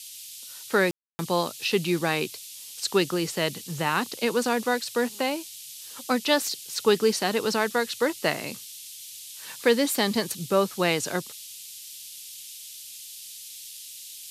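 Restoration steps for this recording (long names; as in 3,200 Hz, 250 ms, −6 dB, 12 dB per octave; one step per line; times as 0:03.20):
ambience match 0:00.91–0:01.19
noise reduction from a noise print 29 dB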